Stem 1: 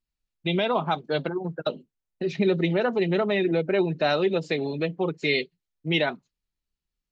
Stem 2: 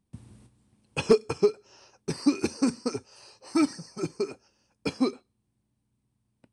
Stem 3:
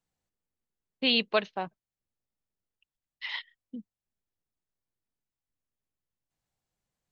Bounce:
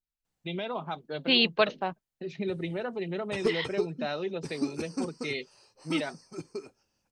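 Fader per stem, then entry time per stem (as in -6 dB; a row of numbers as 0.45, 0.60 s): -10.0, -8.5, +2.0 dB; 0.00, 2.35, 0.25 s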